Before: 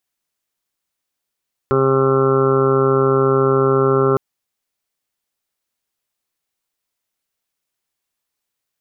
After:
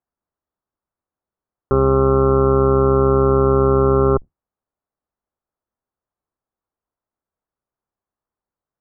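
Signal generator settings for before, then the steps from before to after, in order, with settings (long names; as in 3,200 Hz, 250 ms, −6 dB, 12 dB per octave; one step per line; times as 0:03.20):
steady harmonic partials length 2.46 s, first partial 134 Hz, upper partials −3/6/−3/−16/−11/−19.5/−6/−6/−2.5/−19 dB, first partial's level −20 dB
sub-octave generator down 2 octaves, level −3 dB
low-pass filter 1,300 Hz 24 dB per octave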